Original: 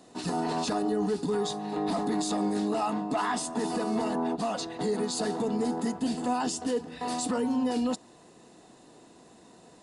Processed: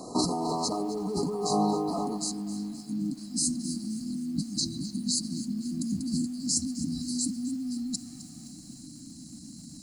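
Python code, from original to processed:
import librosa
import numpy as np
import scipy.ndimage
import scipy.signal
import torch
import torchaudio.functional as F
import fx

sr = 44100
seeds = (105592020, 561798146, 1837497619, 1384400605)

y = fx.over_compress(x, sr, threshold_db=-36.0, ratio=-1.0)
y = fx.brickwall_bandstop(y, sr, low_hz=fx.steps((0.0, 1300.0), (2.16, 310.0)), high_hz=3900.0)
y = fx.echo_crushed(y, sr, ms=260, feedback_pct=55, bits=9, wet_db=-14.5)
y = y * 10.0 ** (7.0 / 20.0)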